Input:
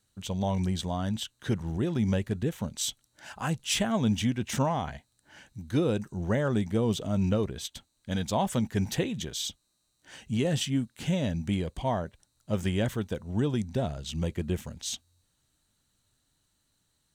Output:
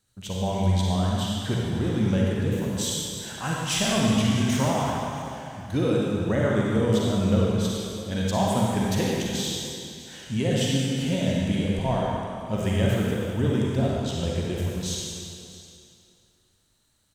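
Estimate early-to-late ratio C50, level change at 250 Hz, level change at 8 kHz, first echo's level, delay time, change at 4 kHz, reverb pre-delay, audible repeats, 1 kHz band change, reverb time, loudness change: −3.0 dB, +5.0 dB, +5.0 dB, −18.5 dB, 655 ms, +5.5 dB, 38 ms, 1, +5.0 dB, 2.6 s, +5.0 dB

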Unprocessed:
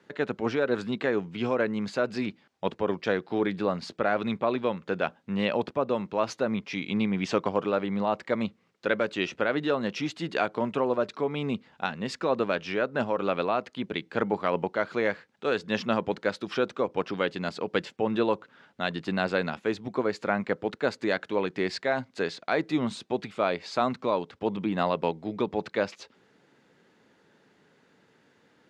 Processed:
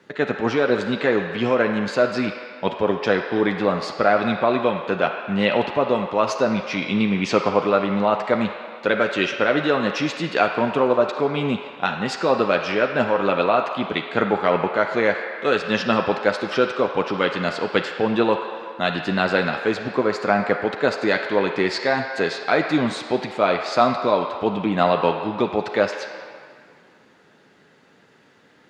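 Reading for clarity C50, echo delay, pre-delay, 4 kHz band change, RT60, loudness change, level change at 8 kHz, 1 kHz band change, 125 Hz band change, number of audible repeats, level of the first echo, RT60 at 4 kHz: 5.0 dB, no echo audible, 9 ms, +8.5 dB, 2.1 s, +8.0 dB, can't be measured, +9.0 dB, +6.5 dB, no echo audible, no echo audible, 1.6 s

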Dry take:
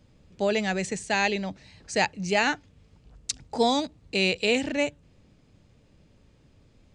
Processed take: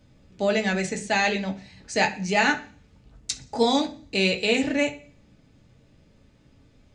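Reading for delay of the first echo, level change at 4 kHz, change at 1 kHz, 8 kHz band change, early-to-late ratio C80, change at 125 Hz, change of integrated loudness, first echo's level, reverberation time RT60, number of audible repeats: no echo audible, +1.5 dB, +2.0 dB, +1.0 dB, 18.5 dB, +3.0 dB, +2.0 dB, no echo audible, 0.45 s, no echo audible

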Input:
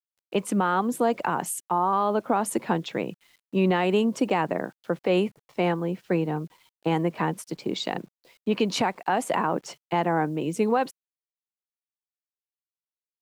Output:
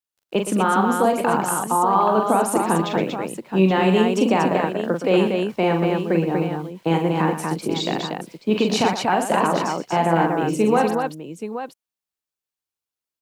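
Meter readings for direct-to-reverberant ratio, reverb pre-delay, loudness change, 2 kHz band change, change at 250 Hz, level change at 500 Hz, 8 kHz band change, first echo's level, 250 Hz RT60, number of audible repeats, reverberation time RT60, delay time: no reverb audible, no reverb audible, +6.0 dB, +5.5 dB, +6.0 dB, +6.0 dB, +6.0 dB, −5.5 dB, no reverb audible, 4, no reverb audible, 42 ms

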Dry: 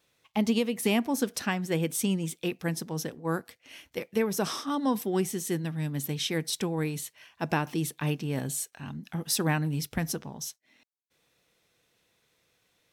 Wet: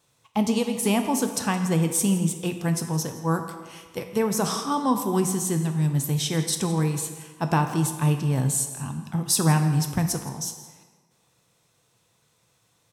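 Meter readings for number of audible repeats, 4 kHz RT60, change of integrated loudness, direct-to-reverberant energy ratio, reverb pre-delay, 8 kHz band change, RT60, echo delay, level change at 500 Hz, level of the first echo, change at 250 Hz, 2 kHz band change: 1, 1.1 s, +6.0 dB, 5.5 dB, 4 ms, +8.0 dB, 1.5 s, 167 ms, +3.0 dB, −17.5 dB, +5.0 dB, +0.5 dB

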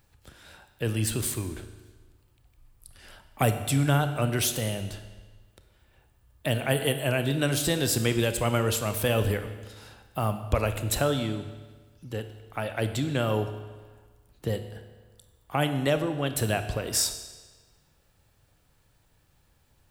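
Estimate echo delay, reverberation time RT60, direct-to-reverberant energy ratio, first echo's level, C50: no echo audible, 1.4 s, 8.5 dB, no echo audible, 10.0 dB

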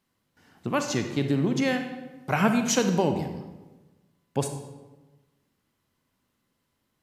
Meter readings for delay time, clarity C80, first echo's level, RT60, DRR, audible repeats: no echo audible, 9.5 dB, no echo audible, 1.2 s, 6.0 dB, no echo audible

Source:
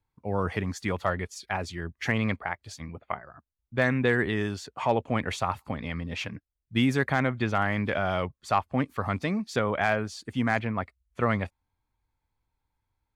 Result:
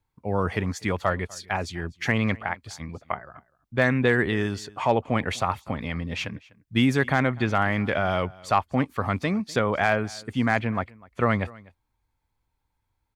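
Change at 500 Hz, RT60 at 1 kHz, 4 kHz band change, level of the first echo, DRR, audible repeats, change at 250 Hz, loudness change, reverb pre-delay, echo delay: +3.0 dB, no reverb audible, +3.0 dB, −23.0 dB, no reverb audible, 1, +3.0 dB, +3.0 dB, no reverb audible, 249 ms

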